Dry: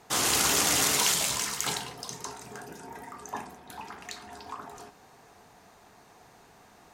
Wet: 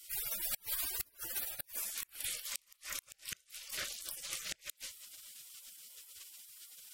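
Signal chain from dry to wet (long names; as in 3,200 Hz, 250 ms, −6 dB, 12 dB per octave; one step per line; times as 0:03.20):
gate on every frequency bin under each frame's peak −25 dB weak
gate with flip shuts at −40 dBFS, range −32 dB
level +18 dB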